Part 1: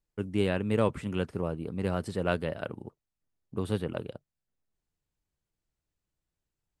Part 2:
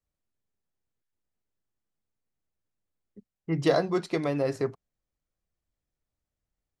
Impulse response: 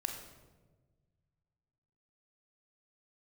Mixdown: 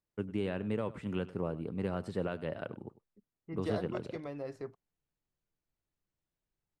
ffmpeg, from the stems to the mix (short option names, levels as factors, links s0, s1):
-filter_complex "[0:a]highpass=96,highshelf=f=9900:g=-8,alimiter=limit=0.0891:level=0:latency=1:release=238,volume=0.794,asplit=2[s0][s1];[s1]volume=0.126[s2];[1:a]asubboost=boost=2.5:cutoff=56,volume=0.224[s3];[s2]aecho=0:1:99:1[s4];[s0][s3][s4]amix=inputs=3:normalize=0,highshelf=f=3600:g=-6.5"